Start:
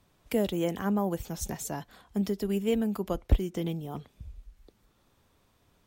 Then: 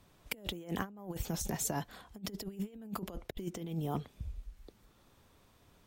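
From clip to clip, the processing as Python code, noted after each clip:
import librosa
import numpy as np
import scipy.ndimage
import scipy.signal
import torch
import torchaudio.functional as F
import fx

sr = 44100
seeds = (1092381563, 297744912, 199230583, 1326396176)

y = fx.over_compress(x, sr, threshold_db=-35.0, ratio=-0.5)
y = y * 10.0 ** (-3.5 / 20.0)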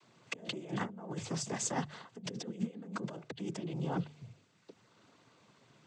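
y = fx.diode_clip(x, sr, knee_db=-24.5)
y = fx.noise_vocoder(y, sr, seeds[0], bands=16)
y = fx.hum_notches(y, sr, base_hz=50, count=3)
y = y * 10.0 ** (2.5 / 20.0)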